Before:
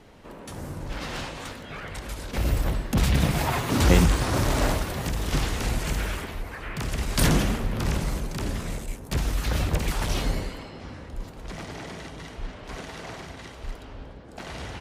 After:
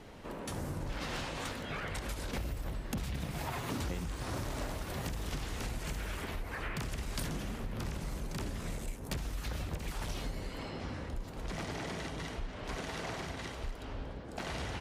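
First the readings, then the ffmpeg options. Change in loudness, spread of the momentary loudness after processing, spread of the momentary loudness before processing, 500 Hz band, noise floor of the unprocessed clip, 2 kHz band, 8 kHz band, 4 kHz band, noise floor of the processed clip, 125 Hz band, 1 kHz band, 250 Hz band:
−12.5 dB, 4 LU, 18 LU, −10.5 dB, −43 dBFS, −9.5 dB, −11.5 dB, −10.0 dB, −45 dBFS, −12.5 dB, −10.0 dB, −12.0 dB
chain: -af "acompressor=threshold=-34dB:ratio=12"

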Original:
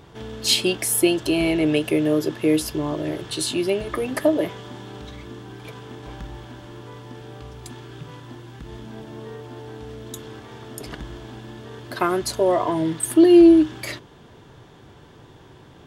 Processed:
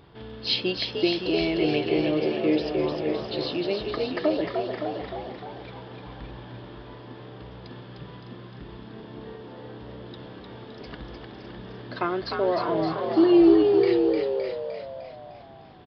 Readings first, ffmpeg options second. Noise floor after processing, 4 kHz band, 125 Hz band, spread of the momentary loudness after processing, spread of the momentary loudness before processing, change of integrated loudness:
−44 dBFS, −3.5 dB, −4.5 dB, 22 LU, 21 LU, −4.5 dB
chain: -filter_complex "[0:a]asplit=2[link_01][link_02];[link_02]aecho=0:1:565:0.376[link_03];[link_01][link_03]amix=inputs=2:normalize=0,aresample=11025,aresample=44100,asplit=2[link_04][link_05];[link_05]asplit=7[link_06][link_07][link_08][link_09][link_10][link_11][link_12];[link_06]adelay=303,afreqshift=66,volume=-5dB[link_13];[link_07]adelay=606,afreqshift=132,volume=-10.7dB[link_14];[link_08]adelay=909,afreqshift=198,volume=-16.4dB[link_15];[link_09]adelay=1212,afreqshift=264,volume=-22dB[link_16];[link_10]adelay=1515,afreqshift=330,volume=-27.7dB[link_17];[link_11]adelay=1818,afreqshift=396,volume=-33.4dB[link_18];[link_12]adelay=2121,afreqshift=462,volume=-39.1dB[link_19];[link_13][link_14][link_15][link_16][link_17][link_18][link_19]amix=inputs=7:normalize=0[link_20];[link_04][link_20]amix=inputs=2:normalize=0,volume=-5.5dB"

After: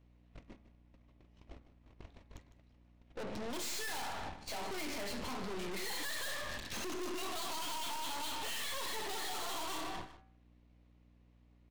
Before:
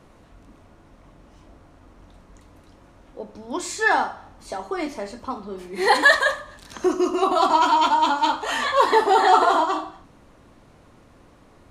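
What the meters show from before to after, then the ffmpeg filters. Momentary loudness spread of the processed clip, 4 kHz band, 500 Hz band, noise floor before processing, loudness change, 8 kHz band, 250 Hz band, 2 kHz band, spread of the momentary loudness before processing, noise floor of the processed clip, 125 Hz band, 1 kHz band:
20 LU, −11.0 dB, −21.0 dB, −53 dBFS, −20.0 dB, −6.0 dB, −17.5 dB, −21.0 dB, 18 LU, −65 dBFS, can't be measured, −24.0 dB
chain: -filter_complex "[0:a]acrossover=split=230|910[link_01][link_02][link_03];[link_03]adynamicsmooth=sensitivity=6:basefreq=2100[link_04];[link_01][link_02][link_04]amix=inputs=3:normalize=0,agate=range=-30dB:threshold=-45dB:ratio=16:detection=peak,acompressor=threshold=-30dB:ratio=6,aeval=exprs='val(0)+0.000316*(sin(2*PI*60*n/s)+sin(2*PI*2*60*n/s)/2+sin(2*PI*3*60*n/s)/3+sin(2*PI*4*60*n/s)/4+sin(2*PI*5*60*n/s)/5)':channel_layout=same,aexciter=amount=4.5:drive=6.7:freq=2000,bandreject=frequency=69.81:width_type=h:width=4,bandreject=frequency=139.62:width_type=h:width=4,bandreject=frequency=209.43:width_type=h:width=4,bandreject=frequency=279.24:width_type=h:width=4,bandreject=frequency=349.05:width_type=h:width=4,bandreject=frequency=418.86:width_type=h:width=4,bandreject=frequency=488.67:width_type=h:width=4,bandreject=frequency=558.48:width_type=h:width=4,bandreject=frequency=628.29:width_type=h:width=4,bandreject=frequency=698.1:width_type=h:width=4,bandreject=frequency=767.91:width_type=h:width=4,bandreject=frequency=837.72:width_type=h:width=4,bandreject=frequency=907.53:width_type=h:width=4,bandreject=frequency=977.34:width_type=h:width=4,bandreject=frequency=1047.15:width_type=h:width=4,bandreject=frequency=1116.96:width_type=h:width=4,bandreject=frequency=1186.77:width_type=h:width=4,bandreject=frequency=1256.58:width_type=h:width=4,bandreject=frequency=1326.39:width_type=h:width=4,bandreject=frequency=1396.2:width_type=h:width=4,bandreject=frequency=1466.01:width_type=h:width=4,bandreject=frequency=1535.82:width_type=h:width=4,bandreject=frequency=1605.63:width_type=h:width=4,bandreject=frequency=1675.44:width_type=h:width=4,bandreject=frequency=1745.25:width_type=h:width=4,bandreject=frequency=1815.06:width_type=h:width=4,bandreject=frequency=1884.87:width_type=h:width=4,bandreject=frequency=1954.68:width_type=h:width=4,bandreject=frequency=2024.49:width_type=h:width=4,bandreject=frequency=2094.3:width_type=h:width=4,bandreject=frequency=2164.11:width_type=h:width=4,bandreject=frequency=2233.92:width_type=h:width=4,bandreject=frequency=2303.73:width_type=h:width=4,bandreject=frequency=2373.54:width_type=h:width=4,bandreject=frequency=2443.35:width_type=h:width=4,bandreject=frequency=2513.16:width_type=h:width=4,bandreject=frequency=2582.97:width_type=h:width=4,aeval=exprs='(tanh(398*val(0)+0.8)-tanh(0.8))/398':channel_layout=same,aecho=1:1:154:0.2,volume=11.5dB"

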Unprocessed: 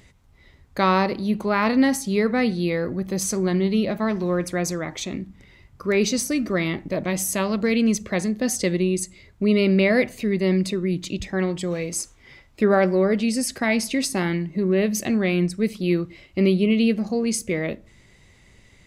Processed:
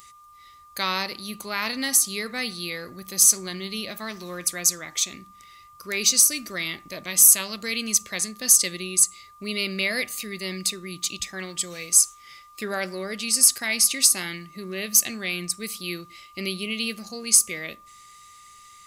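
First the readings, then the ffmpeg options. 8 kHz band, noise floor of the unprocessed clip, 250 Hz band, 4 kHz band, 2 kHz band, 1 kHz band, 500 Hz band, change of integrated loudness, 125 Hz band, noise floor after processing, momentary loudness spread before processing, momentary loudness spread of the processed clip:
+12.0 dB, −54 dBFS, −14.5 dB, +6.0 dB, −1.5 dB, −8.0 dB, −13.0 dB, +1.0 dB, −14.5 dB, −51 dBFS, 9 LU, 16 LU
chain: -af "crystalizer=i=6.5:c=0,tiltshelf=frequency=1500:gain=-5,aeval=exprs='val(0)+0.0126*sin(2*PI*1200*n/s)':channel_layout=same,volume=-10dB"

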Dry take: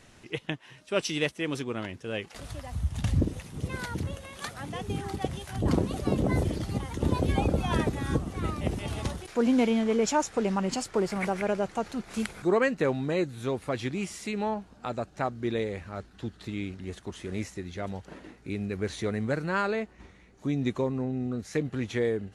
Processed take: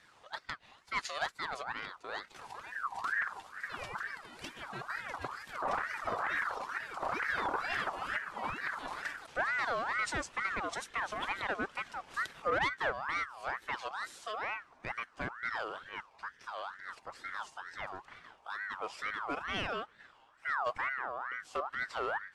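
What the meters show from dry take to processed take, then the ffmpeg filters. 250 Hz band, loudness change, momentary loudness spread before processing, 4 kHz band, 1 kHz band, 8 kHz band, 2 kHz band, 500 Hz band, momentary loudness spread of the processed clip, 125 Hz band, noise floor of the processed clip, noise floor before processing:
−21.0 dB, −6.5 dB, 12 LU, −5.0 dB, −0.5 dB, −11.0 dB, +3.0 dB, −12.5 dB, 11 LU, −23.0 dB, −63 dBFS, −56 dBFS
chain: -af "volume=22dB,asoftclip=hard,volume=-22dB,lowpass=11000,highshelf=frequency=7500:gain=-7,flanger=delay=1.6:depth=2.6:regen=62:speed=0.94:shape=sinusoidal,aeval=exprs='val(0)*sin(2*PI*1300*n/s+1300*0.35/2.2*sin(2*PI*2.2*n/s))':channel_layout=same"

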